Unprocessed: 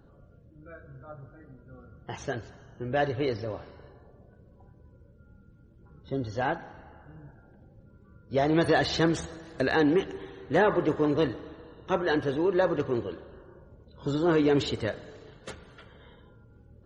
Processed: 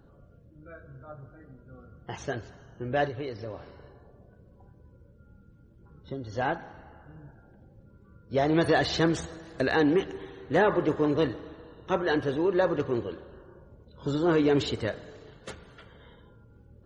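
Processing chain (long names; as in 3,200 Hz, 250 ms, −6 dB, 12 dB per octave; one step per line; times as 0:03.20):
0:03.05–0:06.33: downward compressor 4 to 1, threshold −33 dBFS, peak gain reduction 8 dB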